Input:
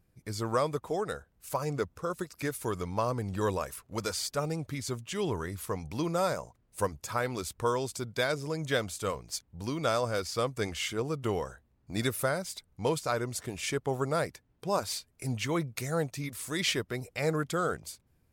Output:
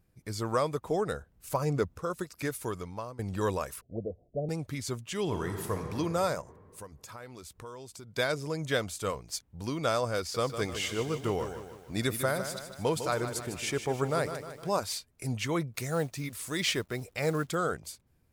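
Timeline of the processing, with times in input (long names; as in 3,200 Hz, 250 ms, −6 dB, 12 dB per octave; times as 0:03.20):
0:00.85–0:02.00: low-shelf EQ 420 Hz +5.5 dB
0:02.54–0:03.19: fade out, to −18 dB
0:03.81–0:04.49: Chebyshev low-pass filter 700 Hz, order 6
0:05.22–0:05.88: thrown reverb, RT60 2.6 s, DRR 3.5 dB
0:06.41–0:08.15: downward compressor 3 to 1, threshold −46 dBFS
0:10.19–0:14.78: feedback echo at a low word length 153 ms, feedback 55%, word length 9 bits, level −9 dB
0:15.74–0:17.55: log-companded quantiser 6 bits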